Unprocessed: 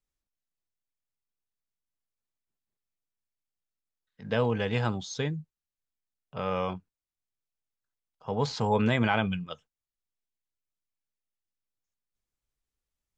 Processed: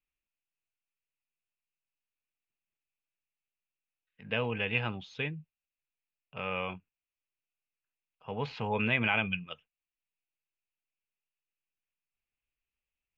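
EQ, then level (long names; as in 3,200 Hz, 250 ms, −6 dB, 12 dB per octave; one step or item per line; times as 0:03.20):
low-pass with resonance 2,600 Hz, resonance Q 6.7
−7.0 dB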